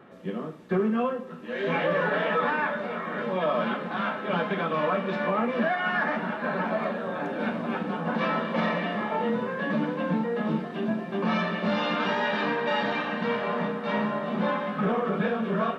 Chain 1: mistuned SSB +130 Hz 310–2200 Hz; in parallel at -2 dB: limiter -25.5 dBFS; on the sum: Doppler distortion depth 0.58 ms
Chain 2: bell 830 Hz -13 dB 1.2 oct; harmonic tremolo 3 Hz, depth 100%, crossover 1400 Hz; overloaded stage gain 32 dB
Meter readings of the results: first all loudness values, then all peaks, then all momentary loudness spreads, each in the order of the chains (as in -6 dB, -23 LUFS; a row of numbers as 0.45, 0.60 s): -26.0, -38.0 LUFS; -13.0, -32.0 dBFS; 6, 4 LU